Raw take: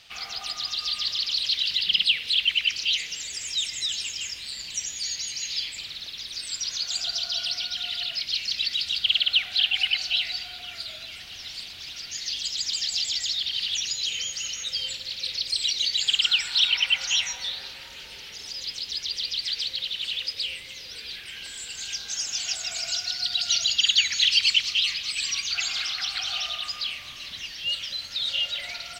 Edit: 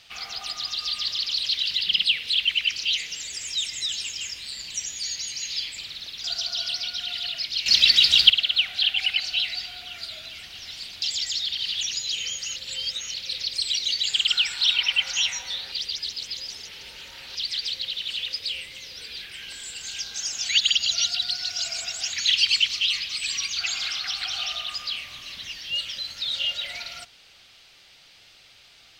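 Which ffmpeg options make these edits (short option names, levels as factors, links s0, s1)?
-filter_complex "[0:a]asplit=11[s0][s1][s2][s3][s4][s5][s6][s7][s8][s9][s10];[s0]atrim=end=6.242[s11];[s1]atrim=start=7.008:end=8.432[s12];[s2]atrim=start=8.428:end=9.072,asetpts=PTS-STARTPTS,volume=3.35[s13];[s3]atrim=start=9.068:end=11.792[s14];[s4]atrim=start=12.958:end=14.502[s15];[s5]atrim=start=14.498:end=15.082,asetpts=PTS-STARTPTS,areverse[s16];[s6]atrim=start=15.078:end=17.662[s17];[s7]atrim=start=17.658:end=19.292,asetpts=PTS-STARTPTS,areverse[s18];[s8]atrim=start=19.288:end=22.432[s19];[s9]atrim=start=22.428:end=24.072,asetpts=PTS-STARTPTS,areverse[s20];[s10]atrim=start=24.068[s21];[s11][s12]acrossfade=d=0.004:c1=hsin:c2=hsin[s22];[s22][s13]acrossfade=d=0.004:c1=hsin:c2=hsin[s23];[s23][s14]acrossfade=d=0.004:c1=hsin:c2=hsin[s24];[s24][s15]acrossfade=d=0.004:c1=hsin:c2=hsin[s25];[s25][s16]acrossfade=d=0.004:c1=hsin:c2=hsin[s26];[s26][s17]acrossfade=d=0.004:c1=hsin:c2=hsin[s27];[s27][s18]acrossfade=d=0.004:c1=hsin:c2=hsin[s28];[s28][s19]acrossfade=d=0.004:c1=hsin:c2=hsin[s29];[s29][s20]acrossfade=d=0.004:c1=hsin:c2=hsin[s30];[s30][s21]acrossfade=d=0.004:c1=hsin:c2=hsin"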